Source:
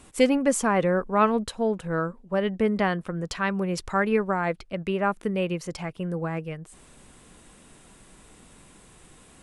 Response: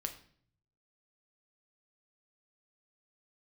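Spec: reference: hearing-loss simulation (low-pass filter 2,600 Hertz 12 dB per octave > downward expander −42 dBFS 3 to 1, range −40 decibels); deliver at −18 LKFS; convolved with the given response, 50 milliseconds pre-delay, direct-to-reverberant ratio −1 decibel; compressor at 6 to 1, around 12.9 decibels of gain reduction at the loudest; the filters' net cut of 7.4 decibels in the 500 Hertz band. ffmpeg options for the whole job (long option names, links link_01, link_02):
-filter_complex "[0:a]equalizer=frequency=500:width_type=o:gain=-9,acompressor=threshold=-32dB:ratio=6,asplit=2[link_01][link_02];[1:a]atrim=start_sample=2205,adelay=50[link_03];[link_02][link_03]afir=irnorm=-1:irlink=0,volume=1.5dB[link_04];[link_01][link_04]amix=inputs=2:normalize=0,lowpass=2600,agate=range=-40dB:threshold=-42dB:ratio=3,volume=15.5dB"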